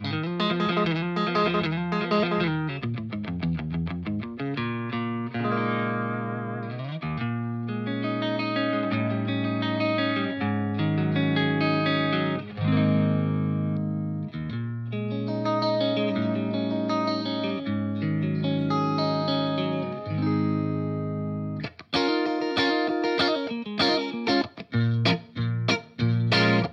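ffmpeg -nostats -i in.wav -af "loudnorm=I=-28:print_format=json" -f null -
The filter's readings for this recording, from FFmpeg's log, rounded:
"input_i" : "-26.0",
"input_tp" : "-10.7",
"input_lra" : "4.4",
"input_thresh" : "-36.0",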